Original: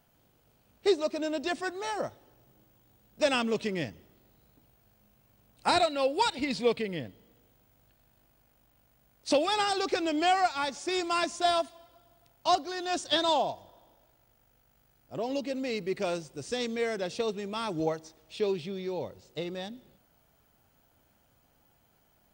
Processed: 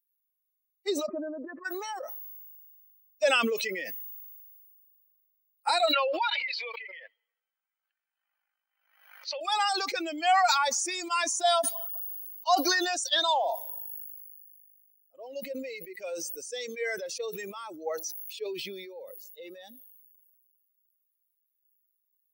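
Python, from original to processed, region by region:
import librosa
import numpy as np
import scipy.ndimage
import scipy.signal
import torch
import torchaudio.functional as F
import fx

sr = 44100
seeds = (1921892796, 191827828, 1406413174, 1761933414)

y = fx.chain(x, sr, fx.lowpass(hz=1300.0, slope=24),
    fx.peak_eq(hz=750.0, db=-14.5, octaves=0.25),
    fx.over_compress(threshold_db=-39.0, ratio=-1.0), at=(1.06, 1.65))
y = fx.chain(y, sr, fx.highpass(hz=950.0, slope=12),
    fx.air_absorb(metres=230.0),
    fx.pre_swell(db_per_s=39.0), at=(5.93, 9.41))
y = fx.bin_expand(y, sr, power=2.0)
y = scipy.signal.sosfilt(scipy.signal.butter(4, 510.0, 'highpass', fs=sr, output='sos'), y)
y = fx.sustainer(y, sr, db_per_s=26.0)
y = y * librosa.db_to_amplitude(3.5)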